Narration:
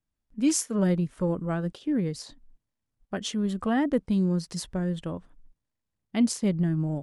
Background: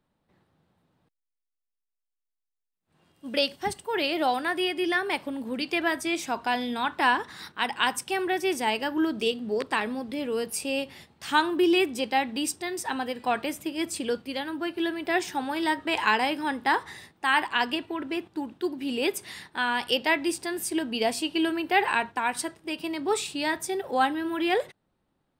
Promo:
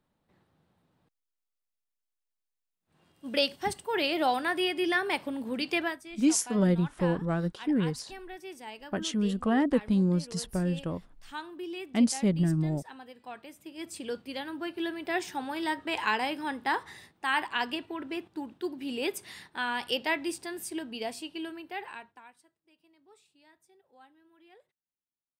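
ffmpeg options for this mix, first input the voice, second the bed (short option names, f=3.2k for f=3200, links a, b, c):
-filter_complex "[0:a]adelay=5800,volume=-0.5dB[a];[1:a]volume=10.5dB,afade=t=out:st=5.77:d=0.22:silence=0.16788,afade=t=in:st=13.54:d=0.79:silence=0.251189,afade=t=out:st=20.05:d=2.34:silence=0.0375837[b];[a][b]amix=inputs=2:normalize=0"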